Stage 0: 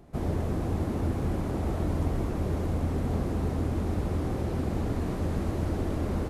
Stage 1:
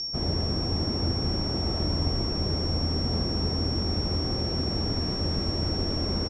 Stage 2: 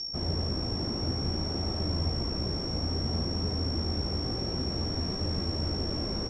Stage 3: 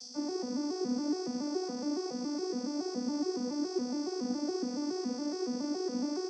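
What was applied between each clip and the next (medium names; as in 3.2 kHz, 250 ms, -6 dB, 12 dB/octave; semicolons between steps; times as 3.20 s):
whistle 5.5 kHz -29 dBFS; steep low-pass 8.9 kHz 48 dB/octave; delay 71 ms -12.5 dB
flange 0.57 Hz, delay 9.5 ms, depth 8.8 ms, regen -28%
vocoder on a broken chord minor triad, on B3, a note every 140 ms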